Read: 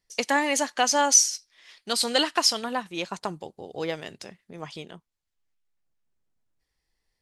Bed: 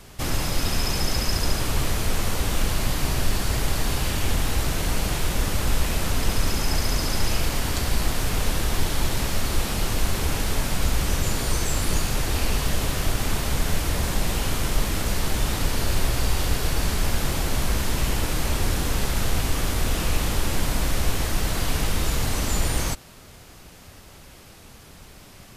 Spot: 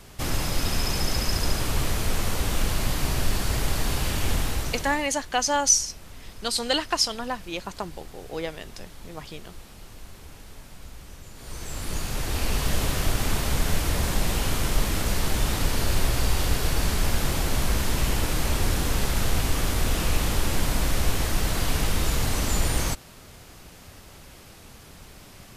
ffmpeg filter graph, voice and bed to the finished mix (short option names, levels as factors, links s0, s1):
-filter_complex "[0:a]adelay=4550,volume=0.841[s0];[1:a]volume=8.41,afade=t=out:st=4.36:d=0.74:silence=0.112202,afade=t=in:st=11.34:d=1.43:silence=0.1[s1];[s0][s1]amix=inputs=2:normalize=0"